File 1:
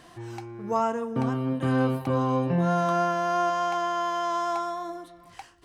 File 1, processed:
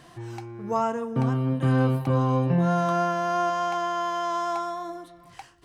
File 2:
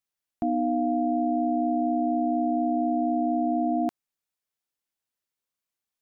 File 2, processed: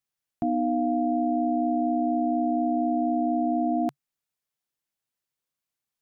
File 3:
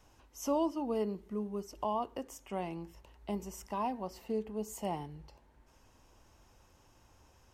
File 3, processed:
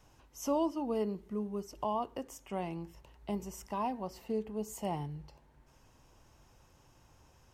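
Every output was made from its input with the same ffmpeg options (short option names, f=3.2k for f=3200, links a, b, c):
-af "equalizer=f=140:t=o:w=0.37:g=8"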